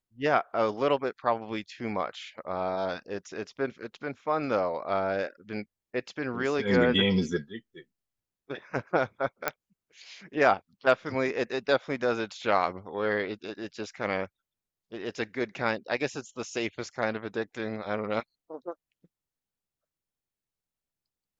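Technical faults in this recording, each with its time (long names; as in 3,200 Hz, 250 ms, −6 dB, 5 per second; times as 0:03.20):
0:09.48: click −10 dBFS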